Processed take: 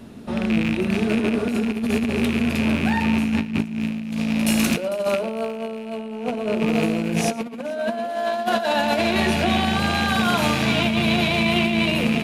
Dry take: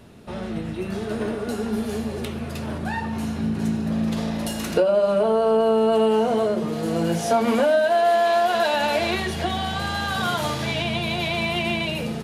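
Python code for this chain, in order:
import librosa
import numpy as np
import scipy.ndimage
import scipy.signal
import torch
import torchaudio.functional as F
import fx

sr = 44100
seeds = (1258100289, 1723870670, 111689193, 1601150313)

y = fx.rattle_buzz(x, sr, strikes_db=-30.0, level_db=-18.0)
y = fx.peak_eq(y, sr, hz=240.0, db=11.0, octaves=0.49)
y = fx.hum_notches(y, sr, base_hz=50, count=5)
y = fx.echo_thinned(y, sr, ms=451, feedback_pct=42, hz=170.0, wet_db=-11.0)
y = fx.over_compress(y, sr, threshold_db=-21.0, ratio=-0.5)
y = fx.high_shelf(y, sr, hz=3800.0, db=6.0, at=(3.8, 5.95))
y = y + 10.0 ** (-20.0 / 20.0) * np.pad(y, (int(114 * sr / 1000.0), 0))[:len(y)]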